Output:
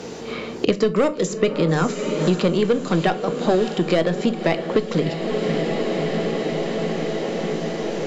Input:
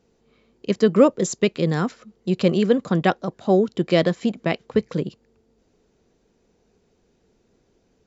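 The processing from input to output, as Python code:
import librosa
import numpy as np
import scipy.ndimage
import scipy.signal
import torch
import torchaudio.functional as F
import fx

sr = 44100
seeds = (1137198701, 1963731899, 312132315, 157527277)

p1 = fx.highpass(x, sr, hz=260.0, slope=6)
p2 = fx.high_shelf(p1, sr, hz=5900.0, db=6.0)
p3 = fx.rider(p2, sr, range_db=10, speed_s=2.0)
p4 = p2 + (p3 * librosa.db_to_amplitude(2.0))
p5 = 10.0 ** (-6.0 / 20.0) * np.tanh(p4 / 10.0 ** (-6.0 / 20.0))
p6 = fx.air_absorb(p5, sr, metres=50.0)
p7 = p6 + fx.echo_diffused(p6, sr, ms=592, feedback_pct=58, wet_db=-13, dry=0)
p8 = fx.room_shoebox(p7, sr, seeds[0], volume_m3=170.0, walls='furnished', distance_m=0.51)
p9 = fx.band_squash(p8, sr, depth_pct=100)
y = p9 * librosa.db_to_amplitude(-3.5)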